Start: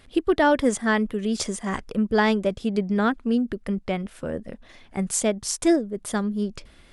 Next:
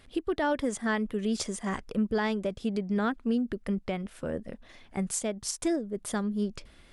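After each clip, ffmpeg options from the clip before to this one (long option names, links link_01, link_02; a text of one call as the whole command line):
ffmpeg -i in.wav -af "alimiter=limit=-16dB:level=0:latency=1:release=218,volume=-3.5dB" out.wav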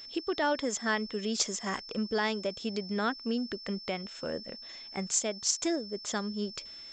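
ffmpeg -i in.wav -af "aeval=exprs='val(0)+0.00316*sin(2*PI*5300*n/s)':channel_layout=same,aemphasis=mode=production:type=bsi,aresample=16000,aresample=44100" out.wav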